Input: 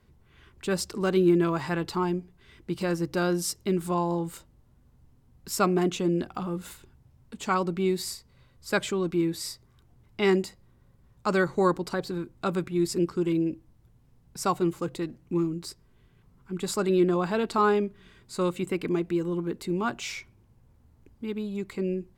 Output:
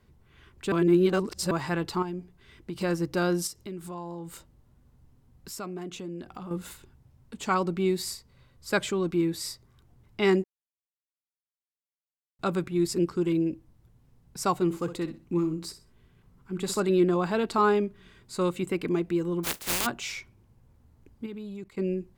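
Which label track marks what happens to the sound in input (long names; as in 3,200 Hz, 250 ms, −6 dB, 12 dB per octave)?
0.720000	1.510000	reverse
2.020000	2.760000	downward compressor, threshold −30 dBFS
3.470000	6.510000	downward compressor 2.5 to 1, threshold −40 dBFS
10.440000	12.390000	silence
14.640000	16.800000	repeating echo 63 ms, feedback 23%, level −12 dB
19.430000	19.850000	compressing power law on the bin magnitudes exponent 0.16
21.260000	21.780000	output level in coarse steps of 19 dB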